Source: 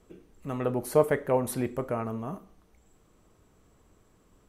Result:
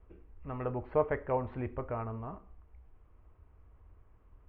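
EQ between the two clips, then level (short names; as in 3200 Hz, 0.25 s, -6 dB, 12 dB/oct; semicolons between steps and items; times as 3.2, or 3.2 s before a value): steep low-pass 2700 Hz 36 dB/oct; resonant low shelf 110 Hz +13 dB, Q 1.5; bell 970 Hz +4.5 dB 0.81 oct; -7.0 dB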